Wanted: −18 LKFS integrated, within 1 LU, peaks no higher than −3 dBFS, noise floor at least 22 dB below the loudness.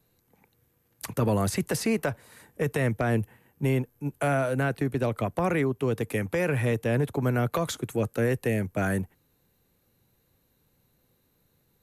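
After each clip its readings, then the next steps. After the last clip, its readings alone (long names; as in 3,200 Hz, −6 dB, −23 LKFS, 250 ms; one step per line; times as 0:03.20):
integrated loudness −27.5 LKFS; sample peak −15.5 dBFS; target loudness −18.0 LKFS
→ level +9.5 dB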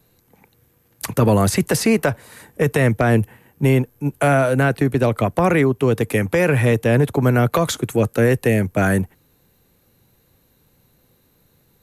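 integrated loudness −18.0 LKFS; sample peak −6.0 dBFS; background noise floor −60 dBFS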